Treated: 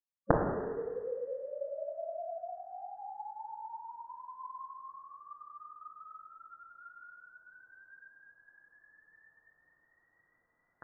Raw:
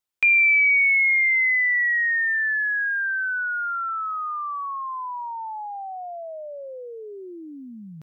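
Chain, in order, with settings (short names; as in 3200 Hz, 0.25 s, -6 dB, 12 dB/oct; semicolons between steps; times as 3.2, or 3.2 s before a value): spectral gate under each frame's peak -20 dB weak; HPF 830 Hz 12 dB/oct; reverb RT60 1.2 s, pre-delay 4 ms, DRR -1.5 dB; inverted band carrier 2900 Hz; speed mistake 45 rpm record played at 33 rpm; gain +12.5 dB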